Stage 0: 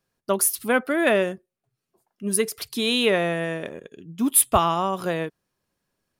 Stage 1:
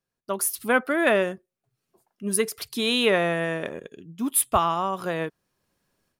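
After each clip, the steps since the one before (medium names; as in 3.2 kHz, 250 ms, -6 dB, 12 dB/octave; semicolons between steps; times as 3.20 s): level rider gain up to 14 dB; dynamic bell 1.2 kHz, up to +4 dB, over -31 dBFS, Q 0.93; trim -8.5 dB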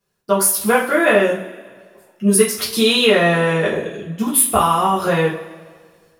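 compression 3:1, threshold -26 dBFS, peak gain reduction 8.5 dB; two-slope reverb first 0.34 s, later 1.7 s, from -18 dB, DRR -7 dB; trim +6 dB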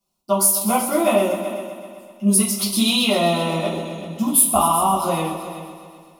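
static phaser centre 450 Hz, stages 6; multi-head delay 127 ms, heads all three, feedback 42%, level -15 dB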